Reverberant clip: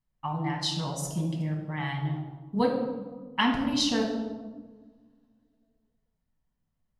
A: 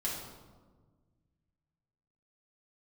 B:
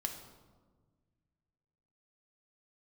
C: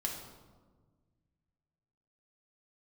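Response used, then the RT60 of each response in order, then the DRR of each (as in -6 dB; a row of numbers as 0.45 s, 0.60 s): C; 1.4 s, 1.5 s, 1.4 s; -6.0 dB, 3.0 dB, -1.0 dB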